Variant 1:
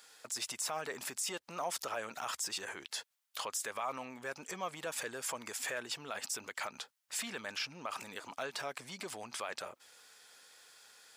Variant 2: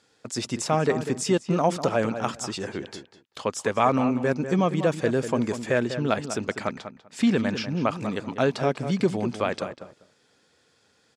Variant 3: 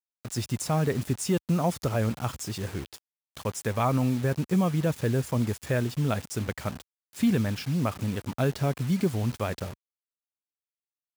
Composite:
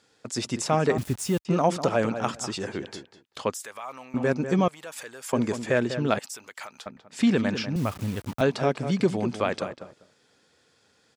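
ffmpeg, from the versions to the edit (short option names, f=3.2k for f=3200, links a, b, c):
-filter_complex "[2:a]asplit=2[a][b];[0:a]asplit=3[c][d][e];[1:a]asplit=6[f][g][h][i][j][k];[f]atrim=end=0.982[l];[a]atrim=start=0.978:end=1.452[m];[g]atrim=start=1.448:end=3.542[n];[c]atrim=start=3.538:end=4.142[o];[h]atrim=start=4.138:end=4.682[p];[d]atrim=start=4.678:end=5.332[q];[i]atrim=start=5.328:end=6.192[r];[e]atrim=start=6.188:end=6.862[s];[j]atrim=start=6.858:end=7.762[t];[b]atrim=start=7.758:end=8.412[u];[k]atrim=start=8.408[v];[l][m]acrossfade=d=0.004:c1=hsin:c2=hsin[w];[w][n]acrossfade=d=0.004:c1=hsin:c2=hsin[x];[x][o]acrossfade=d=0.004:c1=hsin:c2=hsin[y];[y][p]acrossfade=d=0.004:c1=hsin:c2=hsin[z];[z][q]acrossfade=d=0.004:c1=hsin:c2=hsin[aa];[aa][r]acrossfade=d=0.004:c1=hsin:c2=hsin[ab];[ab][s]acrossfade=d=0.004:c1=hsin:c2=hsin[ac];[ac][t]acrossfade=d=0.004:c1=hsin:c2=hsin[ad];[ad][u]acrossfade=d=0.004:c1=hsin:c2=hsin[ae];[ae][v]acrossfade=d=0.004:c1=hsin:c2=hsin"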